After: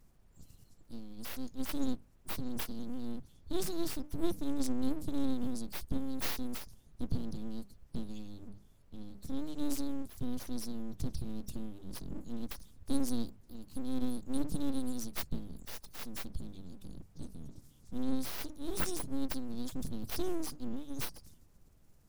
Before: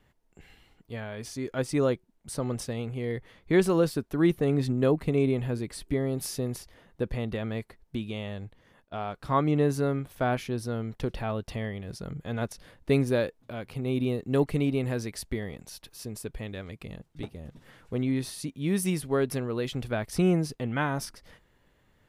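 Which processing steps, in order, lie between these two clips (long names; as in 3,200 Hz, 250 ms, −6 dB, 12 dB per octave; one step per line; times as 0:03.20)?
spectral magnitudes quantised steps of 30 dB
inverse Chebyshev band-stop filter 410–1,800 Hz, stop band 60 dB
mains-hum notches 50/100/150 Hz
full-wave rectification
background noise brown −68 dBFS
level +5 dB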